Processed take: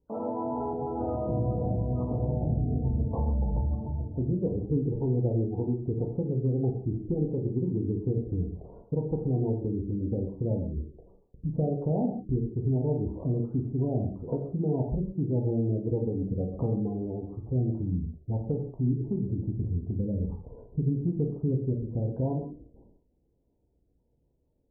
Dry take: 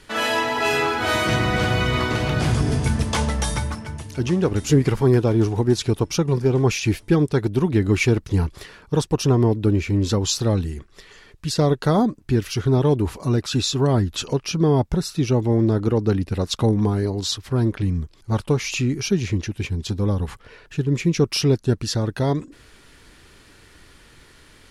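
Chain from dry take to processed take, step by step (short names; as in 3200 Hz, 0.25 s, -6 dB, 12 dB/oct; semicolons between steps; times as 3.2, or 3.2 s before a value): inverse Chebyshev low-pass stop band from 2000 Hz, stop band 50 dB; gate with hold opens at -40 dBFS; spectral gate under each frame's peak -25 dB strong; 19.43–21.63 low shelf 230 Hz +6 dB; compressor 3:1, threshold -29 dBFS, peak gain reduction 14.5 dB; reverb, pre-delay 3 ms, DRR 0.5 dB; gain -1.5 dB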